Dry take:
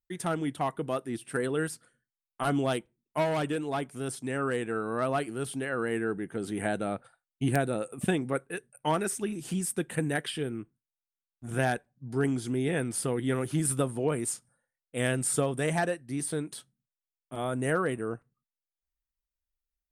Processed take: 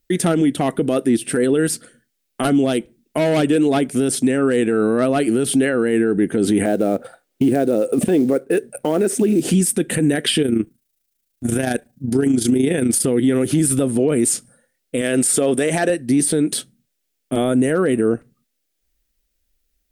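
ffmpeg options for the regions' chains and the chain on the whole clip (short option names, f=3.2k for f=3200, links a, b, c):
-filter_complex "[0:a]asettb=1/sr,asplit=3[a][b][c];[a]atrim=end=6.654[d];[b]atrim=start=6.65:end=9.5,asetpts=PTS-STARTPTS,afade=t=in:d=0.004:c=qsin,afade=t=out:st=2.846:d=0.004:c=qsin,equalizer=f=510:w=0.46:g=12,acrusher=bits=7:mode=log:mix=0:aa=0.000001[e];[c]atrim=start=9.496[f];[d][e]acrossfade=d=0.004:c1=hsin:c2=qsin[g];[g][f]acrossfade=d=0.004:c1=qsin:c2=hsin,asettb=1/sr,asplit=3[h][i][j];[h]atrim=end=10.424[k];[i]atrim=start=10.42:end=13.05,asetpts=PTS-STARTPTS,afade=t=in:d=0.004:c=qsin,afade=t=out:st=2.626:d=0.004:c=qsin,highshelf=f=7k:g=8,tremolo=f=27:d=0.621[l];[j]atrim=start=13.046[m];[k][l]acrossfade=d=0.004:c1=hsin:c2=qsin[n];[n][m]acrossfade=d=0.004:c1=qsin:c2=hsin,asettb=1/sr,asplit=3[o][p][q];[o]atrim=end=15.014[r];[p]atrim=start=15.01:end=15.9,asetpts=PTS-STARTPTS,afade=t=in:d=0.004:c=qsin,afade=t=out:st=0.886:d=0.004:c=qsin,bass=f=250:g=-10,treble=f=4k:g=-1,acompressor=threshold=-30dB:ratio=2.5:attack=3.2:release=140:knee=1:detection=peak[s];[q]atrim=start=15.896[t];[r][s]acrossfade=d=0.004:c1=hsin:c2=qsin[u];[u][t]acrossfade=d=0.004:c1=qsin:c2=hsin,equalizer=f=125:t=o:w=1:g=-5,equalizer=f=250:t=o:w=1:g=6,equalizer=f=500:t=o:w=1:g=3,equalizer=f=1k:t=o:w=1:g=-11,acompressor=threshold=-29dB:ratio=6,alimiter=level_in=27dB:limit=-1dB:release=50:level=0:latency=1,volume=-7.5dB"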